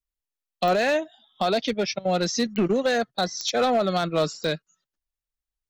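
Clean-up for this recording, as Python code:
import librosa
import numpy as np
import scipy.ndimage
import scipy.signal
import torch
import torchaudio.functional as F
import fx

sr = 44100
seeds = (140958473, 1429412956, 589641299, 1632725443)

y = fx.fix_declip(x, sr, threshold_db=-16.0)
y = fx.fix_declick_ar(y, sr, threshold=10.0)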